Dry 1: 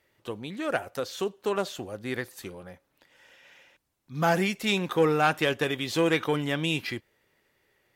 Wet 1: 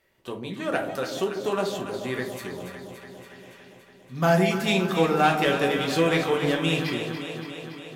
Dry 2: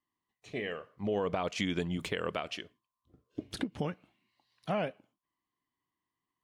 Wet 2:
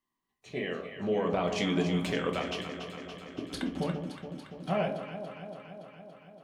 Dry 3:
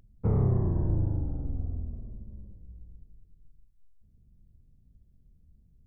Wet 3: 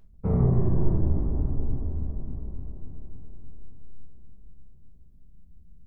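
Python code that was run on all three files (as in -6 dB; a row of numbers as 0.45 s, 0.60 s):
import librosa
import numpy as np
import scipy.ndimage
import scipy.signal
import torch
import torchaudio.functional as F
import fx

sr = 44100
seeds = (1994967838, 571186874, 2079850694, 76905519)

y = fx.echo_alternate(x, sr, ms=142, hz=860.0, feedback_pct=83, wet_db=-7)
y = fx.room_shoebox(y, sr, seeds[0], volume_m3=200.0, walls='furnished', distance_m=1.1)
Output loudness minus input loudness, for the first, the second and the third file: +3.0 LU, +2.5 LU, +2.0 LU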